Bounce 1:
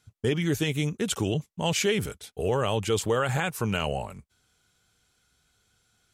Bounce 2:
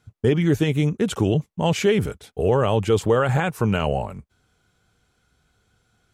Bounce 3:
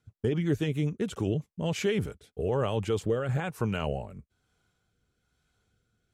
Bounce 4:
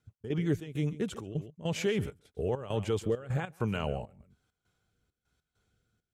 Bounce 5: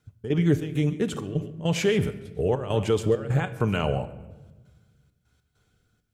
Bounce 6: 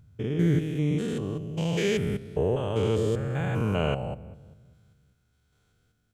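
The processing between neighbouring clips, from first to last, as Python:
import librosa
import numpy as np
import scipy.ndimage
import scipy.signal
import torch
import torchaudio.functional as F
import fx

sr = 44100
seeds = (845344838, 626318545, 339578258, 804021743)

y1 = fx.high_shelf(x, sr, hz=2200.0, db=-12.0)
y1 = F.gain(torch.from_numpy(y1), 7.5).numpy()
y2 = fx.rotary_switch(y1, sr, hz=7.5, then_hz=1.1, switch_at_s=0.86)
y2 = F.gain(torch.from_numpy(y2), -7.0).numpy()
y3 = y2 + 10.0 ** (-17.0 / 20.0) * np.pad(y2, (int(137 * sr / 1000.0), 0))[:len(y2)]
y3 = fx.step_gate(y3, sr, bpm=100, pattern='x.xx.xxx.x.xx', floor_db=-12.0, edge_ms=4.5)
y3 = F.gain(torch.from_numpy(y3), -2.0).numpy()
y4 = fx.room_shoebox(y3, sr, seeds[0], volume_m3=790.0, walls='mixed', distance_m=0.41)
y4 = F.gain(torch.from_numpy(y4), 7.0).numpy()
y5 = fx.spec_steps(y4, sr, hold_ms=200)
y5 = F.gain(torch.from_numpy(y5), 1.0).numpy()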